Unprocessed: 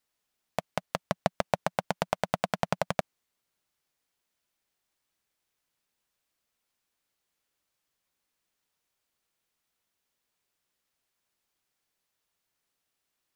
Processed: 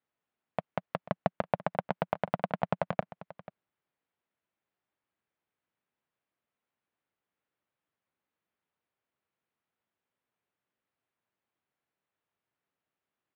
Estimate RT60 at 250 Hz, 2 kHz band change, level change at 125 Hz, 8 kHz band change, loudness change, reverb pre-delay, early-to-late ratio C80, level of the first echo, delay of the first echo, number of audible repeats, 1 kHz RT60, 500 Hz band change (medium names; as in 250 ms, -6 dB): no reverb, -4.5 dB, -1.0 dB, under -25 dB, -2.0 dB, no reverb, no reverb, -17.0 dB, 489 ms, 1, no reverb, -1.5 dB